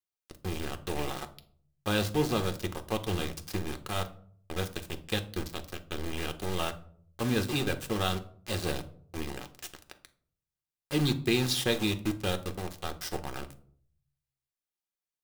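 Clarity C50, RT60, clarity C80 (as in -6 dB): 15.5 dB, 0.55 s, 20.5 dB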